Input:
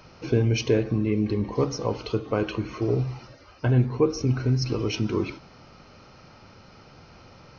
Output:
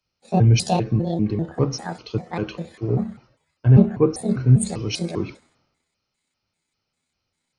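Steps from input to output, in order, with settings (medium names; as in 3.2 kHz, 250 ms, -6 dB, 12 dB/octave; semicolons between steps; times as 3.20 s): pitch shift switched off and on +8.5 st, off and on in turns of 198 ms; dynamic bell 150 Hz, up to +8 dB, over -38 dBFS, Q 0.95; three bands expanded up and down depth 100%; trim -2 dB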